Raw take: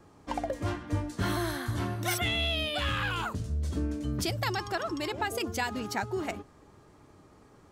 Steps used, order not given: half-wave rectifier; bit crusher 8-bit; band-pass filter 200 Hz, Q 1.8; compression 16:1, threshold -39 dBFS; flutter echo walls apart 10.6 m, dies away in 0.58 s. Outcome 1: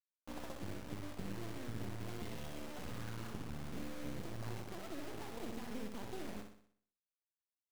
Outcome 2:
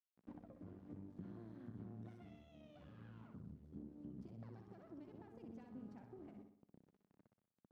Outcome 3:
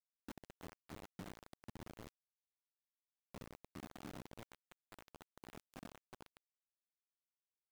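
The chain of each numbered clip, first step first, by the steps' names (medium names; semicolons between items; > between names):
band-pass filter > half-wave rectifier > compression > bit crusher > flutter echo; bit crusher > compression > flutter echo > half-wave rectifier > band-pass filter; half-wave rectifier > flutter echo > compression > band-pass filter > bit crusher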